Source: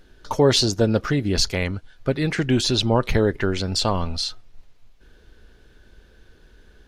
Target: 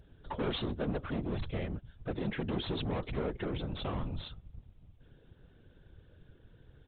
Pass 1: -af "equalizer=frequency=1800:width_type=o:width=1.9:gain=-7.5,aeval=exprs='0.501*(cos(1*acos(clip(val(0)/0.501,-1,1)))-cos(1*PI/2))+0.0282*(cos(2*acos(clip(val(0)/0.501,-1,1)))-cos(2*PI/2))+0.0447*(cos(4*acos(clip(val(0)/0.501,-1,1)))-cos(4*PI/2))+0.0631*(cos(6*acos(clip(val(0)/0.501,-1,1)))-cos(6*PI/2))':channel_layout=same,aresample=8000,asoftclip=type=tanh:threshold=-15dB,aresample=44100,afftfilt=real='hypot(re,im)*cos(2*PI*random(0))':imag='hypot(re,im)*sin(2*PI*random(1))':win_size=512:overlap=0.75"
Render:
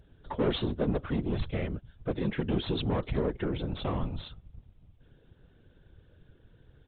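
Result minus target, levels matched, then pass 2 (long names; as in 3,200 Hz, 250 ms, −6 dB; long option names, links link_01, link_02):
soft clipping: distortion −8 dB
-af "equalizer=frequency=1800:width_type=o:width=1.9:gain=-7.5,aeval=exprs='0.501*(cos(1*acos(clip(val(0)/0.501,-1,1)))-cos(1*PI/2))+0.0282*(cos(2*acos(clip(val(0)/0.501,-1,1)))-cos(2*PI/2))+0.0447*(cos(4*acos(clip(val(0)/0.501,-1,1)))-cos(4*PI/2))+0.0631*(cos(6*acos(clip(val(0)/0.501,-1,1)))-cos(6*PI/2))':channel_layout=same,aresample=8000,asoftclip=type=tanh:threshold=-24.5dB,aresample=44100,afftfilt=real='hypot(re,im)*cos(2*PI*random(0))':imag='hypot(re,im)*sin(2*PI*random(1))':win_size=512:overlap=0.75"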